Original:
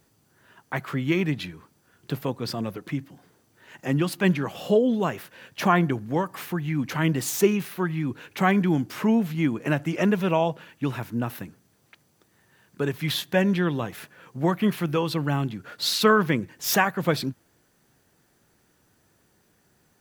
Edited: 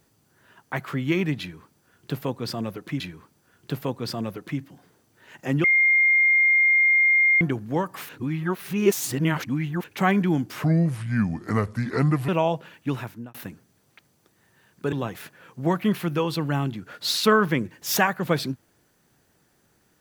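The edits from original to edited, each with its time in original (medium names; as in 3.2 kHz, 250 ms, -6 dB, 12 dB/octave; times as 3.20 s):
1.40–3.00 s: loop, 2 plays
4.04–5.81 s: bleep 2.12 kHz -15 dBFS
6.49–8.24 s: reverse
9.04–10.24 s: speed 73%
10.92–11.30 s: fade out
12.88–13.70 s: delete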